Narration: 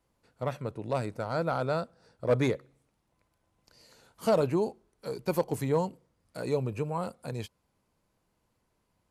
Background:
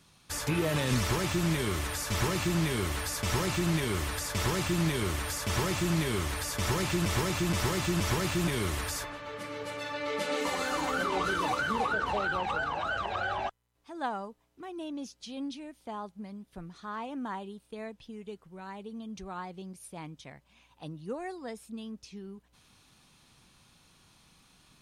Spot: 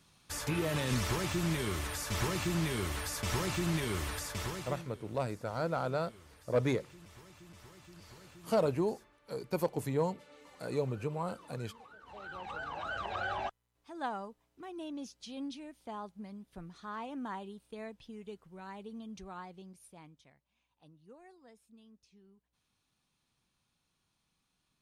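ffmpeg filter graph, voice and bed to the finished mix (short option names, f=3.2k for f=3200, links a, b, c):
-filter_complex "[0:a]adelay=4250,volume=-4dB[a];[1:a]volume=18.5dB,afade=t=out:st=4.12:d=0.77:silence=0.0794328,afade=t=in:st=12.03:d=1.23:silence=0.0749894,afade=t=out:st=18.91:d=1.48:silence=0.177828[b];[a][b]amix=inputs=2:normalize=0"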